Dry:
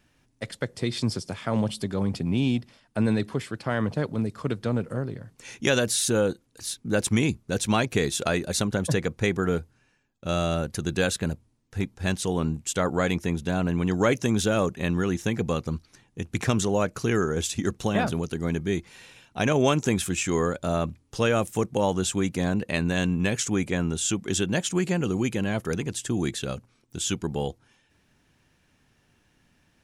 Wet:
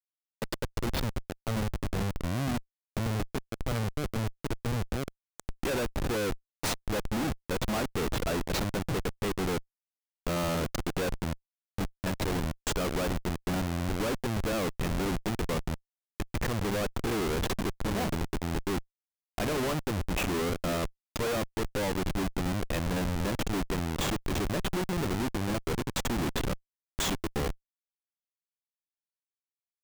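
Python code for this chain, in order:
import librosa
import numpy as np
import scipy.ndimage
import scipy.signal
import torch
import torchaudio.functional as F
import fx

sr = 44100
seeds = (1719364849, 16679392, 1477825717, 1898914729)

y = fx.echo_feedback(x, sr, ms=346, feedback_pct=40, wet_db=-23.0)
y = fx.env_lowpass_down(y, sr, base_hz=2000.0, full_db=-20.5)
y = fx.bass_treble(y, sr, bass_db=-5, treble_db=6)
y = fx.schmitt(y, sr, flips_db=-28.5)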